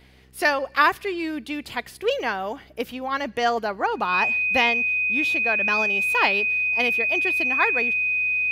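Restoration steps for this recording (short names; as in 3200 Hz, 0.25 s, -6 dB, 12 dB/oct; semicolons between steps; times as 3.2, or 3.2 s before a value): de-hum 64.2 Hz, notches 7; notch 2500 Hz, Q 30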